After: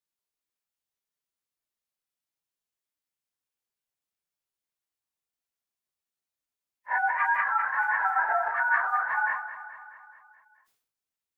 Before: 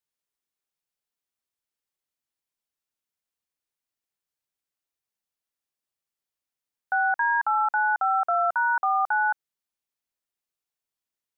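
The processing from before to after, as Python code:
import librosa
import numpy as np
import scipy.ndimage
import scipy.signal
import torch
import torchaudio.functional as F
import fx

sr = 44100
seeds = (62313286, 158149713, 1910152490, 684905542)

y = fx.phase_scramble(x, sr, seeds[0], window_ms=100)
y = fx.formant_shift(y, sr, semitones=4)
y = fx.echo_feedback(y, sr, ms=214, feedback_pct=58, wet_db=-12.0)
y = fx.sustainer(y, sr, db_per_s=88.0)
y = y * librosa.db_to_amplitude(-2.5)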